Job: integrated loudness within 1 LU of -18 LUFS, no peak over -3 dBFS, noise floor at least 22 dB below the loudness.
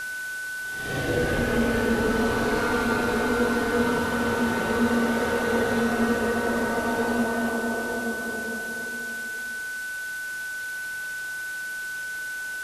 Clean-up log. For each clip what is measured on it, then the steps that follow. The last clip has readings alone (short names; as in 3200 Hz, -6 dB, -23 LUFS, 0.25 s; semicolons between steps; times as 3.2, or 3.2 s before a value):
steady tone 1500 Hz; tone level -30 dBFS; noise floor -33 dBFS; noise floor target -48 dBFS; loudness -26.0 LUFS; peak -11.0 dBFS; loudness target -18.0 LUFS
-> notch 1500 Hz, Q 30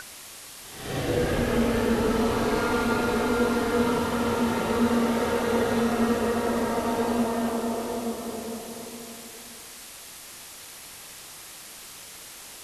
steady tone none; noise floor -44 dBFS; noise floor target -48 dBFS
-> denoiser 6 dB, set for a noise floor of -44 dBFS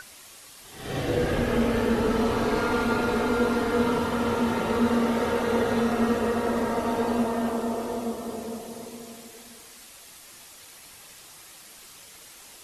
noise floor -48 dBFS; loudness -25.5 LUFS; peak -11.5 dBFS; loudness target -18.0 LUFS
-> gain +7.5 dB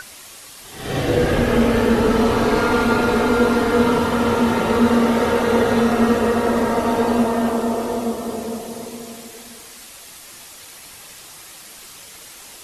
loudness -18.0 LUFS; peak -4.0 dBFS; noise floor -41 dBFS